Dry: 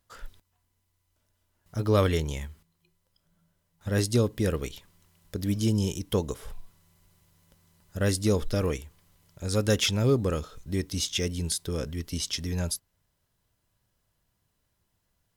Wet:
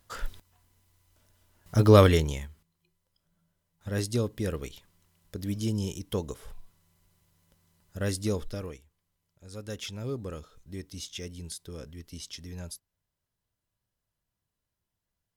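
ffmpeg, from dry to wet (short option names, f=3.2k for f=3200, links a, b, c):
-af "volume=14.5dB,afade=t=out:st=1.79:d=0.69:silence=0.237137,afade=t=out:st=8.27:d=0.54:silence=0.237137,afade=t=in:st=9.45:d=0.79:silence=0.473151"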